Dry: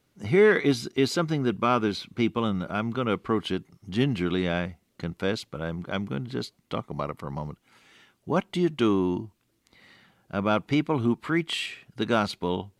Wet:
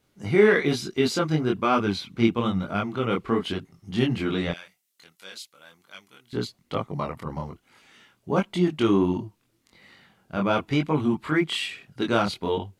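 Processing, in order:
0:04.51–0:06.33: first difference
multi-voice chorus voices 2, 1.1 Hz, delay 23 ms, depth 3.3 ms
level +4.5 dB

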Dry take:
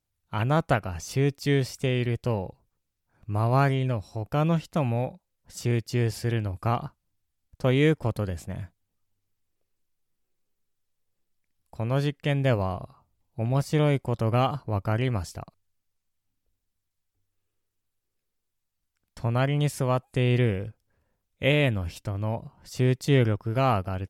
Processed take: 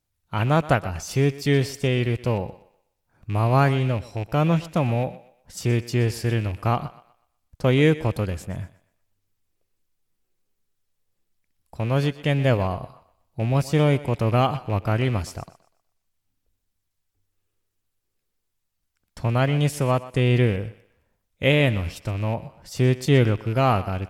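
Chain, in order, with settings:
loose part that buzzes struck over −29 dBFS, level −33 dBFS
feedback echo with a high-pass in the loop 123 ms, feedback 34%, high-pass 310 Hz, level −16 dB
level +3.5 dB

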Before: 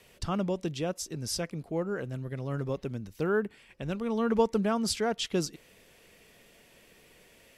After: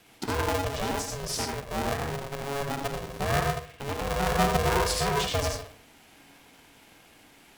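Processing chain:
comb and all-pass reverb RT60 0.53 s, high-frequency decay 0.6×, pre-delay 35 ms, DRR −0.5 dB
ring modulator with a square carrier 280 Hz

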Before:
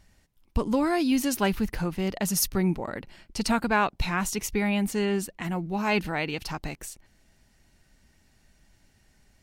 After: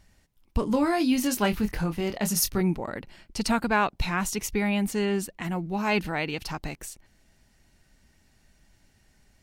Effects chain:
0:00.60–0:02.61: double-tracking delay 24 ms −7.5 dB

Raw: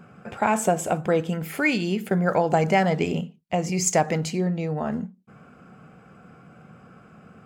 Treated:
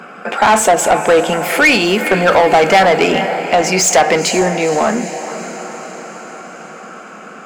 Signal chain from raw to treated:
high-pass filter 200 Hz 24 dB per octave
on a send: feedback delay with all-pass diffusion 463 ms, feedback 60%, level −15 dB
on the sum: mid-hump overdrive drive 22 dB, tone 5,000 Hz, clips at −6 dBFS
level +5 dB

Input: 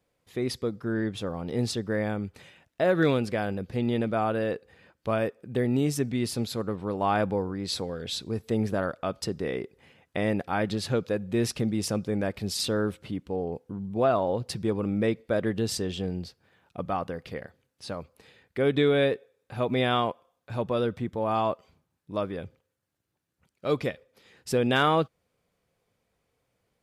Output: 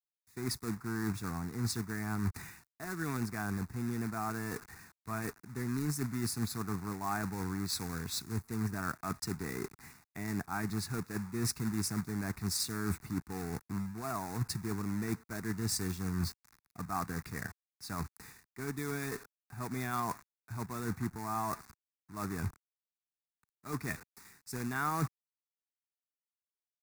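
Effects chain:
log-companded quantiser 4 bits
reversed playback
downward compressor 6 to 1, threshold −38 dBFS, peak gain reduction 19.5 dB
reversed playback
phaser with its sweep stopped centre 1,300 Hz, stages 4
multiband upward and downward expander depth 40%
level +8.5 dB

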